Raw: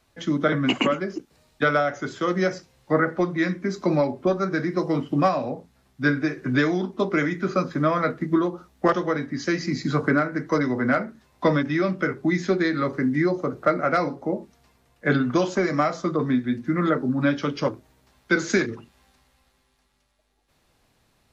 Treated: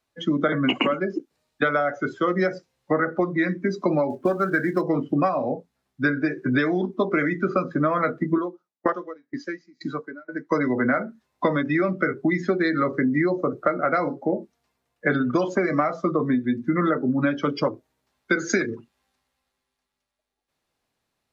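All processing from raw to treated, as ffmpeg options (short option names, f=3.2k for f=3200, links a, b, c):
-filter_complex "[0:a]asettb=1/sr,asplit=3[a][b][c];[a]atrim=end=4.104[d];[b]atrim=start=4.1:end=4.82,asetpts=PTS-STARTPTS,afade=t=in:d=0.004:c=qsin,afade=t=out:st=0.716:d=0.004:c=qsin,equalizer=f=1.6k:w=4.7:g=6.5,acrusher=bits=4:mode=log:mix=0:aa=0.000001[e];[c]atrim=start=4.816[f];[d][e]acrossfade=d=0.004:c1=hsin:c2=qsin[g];[g][f]acrossfade=d=0.004:c1=qsin:c2=hsin,asettb=1/sr,asplit=3[h][i][j];[h]atrim=end=8.384[k];[i]atrim=start=8.38:end=10.51,asetpts=PTS-STARTPTS,afade=t=in:d=0.004:c=qsin,afade=t=out:st=2.126:d=0.004:c=qsin,highpass=f=290:p=1,aeval=exprs='val(0)*pow(10,-27*if(lt(mod(2.1*n/s,1),2*abs(2.1)/1000),1-mod(2.1*n/s,1)/(2*abs(2.1)/1000),(mod(2.1*n/s,1)-2*abs(2.1)/1000)/(1-2*abs(2.1)/1000))/20)':c=same[l];[j]atrim=start=10.506[m];[k][l]acrossfade=d=0.004:c1=hsin:c2=qsin[n];[n][m]acrossfade=d=0.004:c1=qsin:c2=hsin,afftdn=nr=18:nf=-32,lowshelf=f=140:g=-10,acompressor=threshold=-24dB:ratio=6,volume=6dB"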